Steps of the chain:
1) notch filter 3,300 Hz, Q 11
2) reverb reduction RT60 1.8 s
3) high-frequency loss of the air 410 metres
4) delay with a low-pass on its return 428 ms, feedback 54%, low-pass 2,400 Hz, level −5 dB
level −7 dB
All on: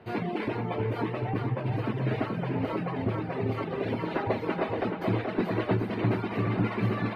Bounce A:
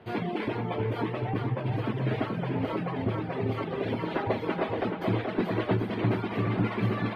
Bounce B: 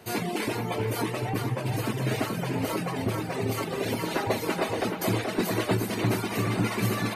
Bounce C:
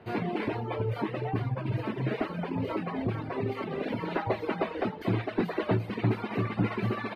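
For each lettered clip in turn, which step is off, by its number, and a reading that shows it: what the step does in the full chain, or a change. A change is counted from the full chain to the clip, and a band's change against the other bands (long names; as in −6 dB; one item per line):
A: 1, 4 kHz band +2.0 dB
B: 3, 4 kHz band +9.0 dB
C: 4, change in integrated loudness −1.5 LU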